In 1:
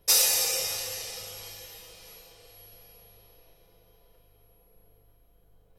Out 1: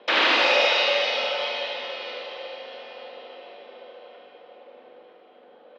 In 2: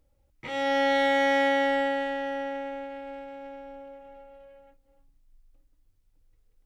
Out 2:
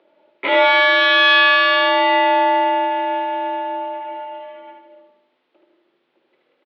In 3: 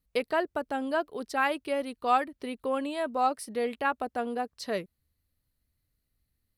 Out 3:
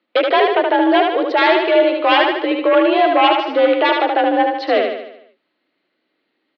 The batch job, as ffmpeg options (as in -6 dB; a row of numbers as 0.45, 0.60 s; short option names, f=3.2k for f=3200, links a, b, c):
-af "aeval=exprs='0.447*sin(PI/2*7.08*val(0)/0.447)':c=same,aecho=1:1:75|150|225|300|375|450|525:0.631|0.328|0.171|0.0887|0.0461|0.024|0.0125,highpass=f=240:t=q:w=0.5412,highpass=f=240:t=q:w=1.307,lowpass=f=3.6k:t=q:w=0.5176,lowpass=f=3.6k:t=q:w=0.7071,lowpass=f=3.6k:t=q:w=1.932,afreqshift=53,volume=-2.5dB"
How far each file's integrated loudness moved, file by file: +4.0, +11.5, +16.0 LU